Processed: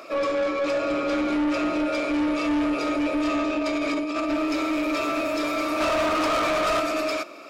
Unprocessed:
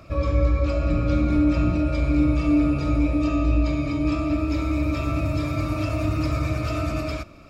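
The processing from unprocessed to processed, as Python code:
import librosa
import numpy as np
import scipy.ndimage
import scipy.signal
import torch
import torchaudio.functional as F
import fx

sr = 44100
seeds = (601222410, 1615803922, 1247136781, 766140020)

y = scipy.signal.sosfilt(scipy.signal.butter(4, 340.0, 'highpass', fs=sr, output='sos'), x)
y = fx.over_compress(y, sr, threshold_db=-31.0, ratio=-0.5, at=(3.59, 4.29))
y = fx.peak_eq(y, sr, hz=950.0, db=11.0, octaves=2.3, at=(5.8, 6.8))
y = 10.0 ** (-29.0 / 20.0) * np.tanh(y / 10.0 ** (-29.0 / 20.0))
y = y * librosa.db_to_amplitude(8.5)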